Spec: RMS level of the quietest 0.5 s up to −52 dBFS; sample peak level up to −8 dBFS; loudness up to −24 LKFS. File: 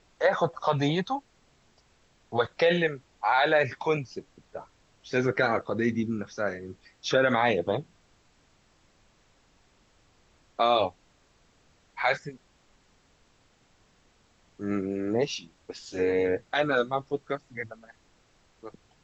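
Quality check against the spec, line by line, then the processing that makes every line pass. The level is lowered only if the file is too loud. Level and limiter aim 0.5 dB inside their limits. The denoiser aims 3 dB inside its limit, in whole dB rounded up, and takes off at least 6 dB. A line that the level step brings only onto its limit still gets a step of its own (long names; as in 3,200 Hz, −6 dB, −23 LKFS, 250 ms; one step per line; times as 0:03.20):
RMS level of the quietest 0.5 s −64 dBFS: in spec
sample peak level −10.5 dBFS: in spec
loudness −27.5 LKFS: in spec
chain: no processing needed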